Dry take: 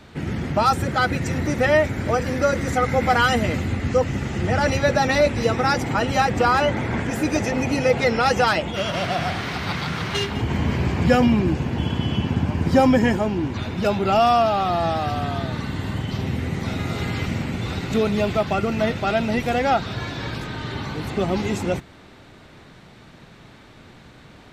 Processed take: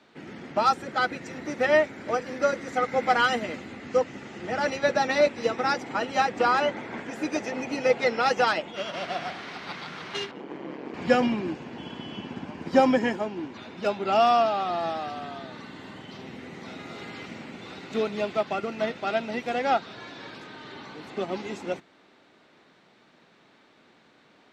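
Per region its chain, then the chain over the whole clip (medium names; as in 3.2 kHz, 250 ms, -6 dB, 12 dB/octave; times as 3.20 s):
10.31–10.94 s: high-pass 250 Hz 24 dB/octave + tilt EQ -3.5 dB/octave + ring modulator 69 Hz
whole clip: three-band isolator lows -24 dB, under 200 Hz, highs -14 dB, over 7.4 kHz; upward expansion 1.5:1, over -29 dBFS; trim -1.5 dB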